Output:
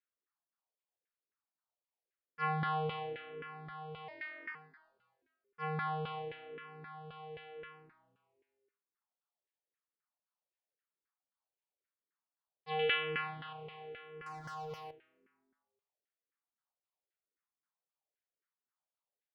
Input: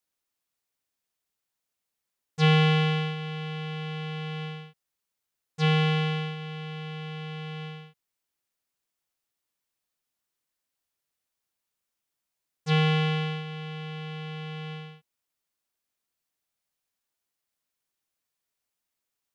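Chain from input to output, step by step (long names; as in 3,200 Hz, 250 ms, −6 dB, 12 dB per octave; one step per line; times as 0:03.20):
0:04.08–0:04.55: ring modulation 2,000 Hz
0:12.79–0:13.53: parametric band 2,900 Hz +12 dB 1.3 octaves
echo with shifted repeats 223 ms, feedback 45%, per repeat −140 Hz, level −18 dB
auto-filter band-pass saw down 3.8 Hz 370–1,700 Hz
downsampling to 11,025 Hz
0:14.26–0:14.91: leveller curve on the samples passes 3
frequency shifter mixed with the dry sound −0.93 Hz
level +2 dB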